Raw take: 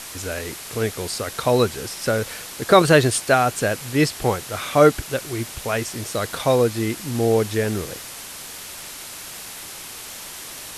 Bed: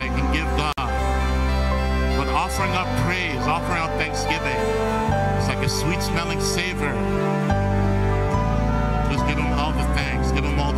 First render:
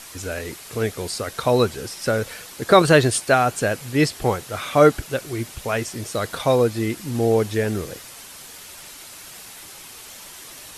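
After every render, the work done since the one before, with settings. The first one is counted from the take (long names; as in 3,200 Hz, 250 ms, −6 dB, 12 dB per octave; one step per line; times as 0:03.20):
broadband denoise 6 dB, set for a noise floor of −37 dBFS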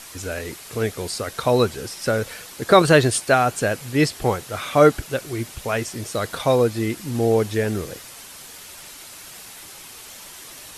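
no processing that can be heard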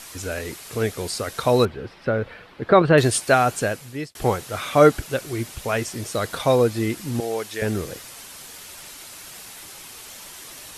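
0:01.65–0:02.98: high-frequency loss of the air 400 metres
0:03.55–0:04.15: fade out
0:07.20–0:07.62: high-pass filter 1,100 Hz 6 dB per octave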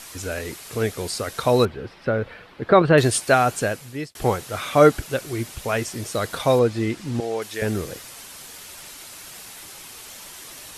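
0:06.59–0:07.42: high-frequency loss of the air 57 metres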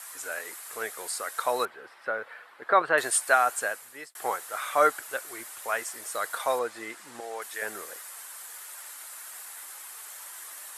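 high-pass filter 960 Hz 12 dB per octave
flat-topped bell 3,800 Hz −9 dB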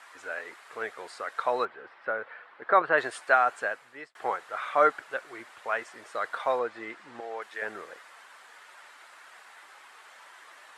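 low-pass filter 2,900 Hz 12 dB per octave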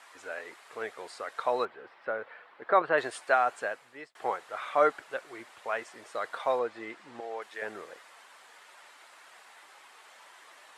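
parametric band 1,500 Hz −5 dB 0.99 octaves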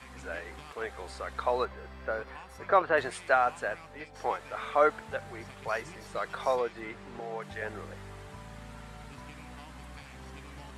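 mix in bed −26 dB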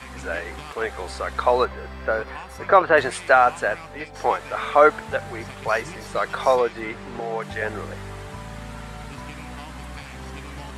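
level +10 dB
brickwall limiter −3 dBFS, peak gain reduction 2 dB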